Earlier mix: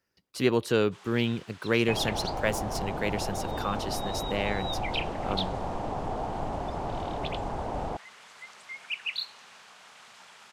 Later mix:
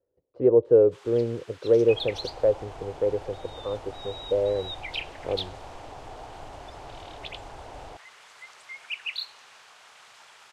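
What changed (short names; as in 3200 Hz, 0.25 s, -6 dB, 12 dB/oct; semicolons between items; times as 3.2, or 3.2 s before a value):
speech: add synth low-pass 510 Hz, resonance Q 4.3; second sound -9.0 dB; master: add bell 200 Hz -14.5 dB 0.53 oct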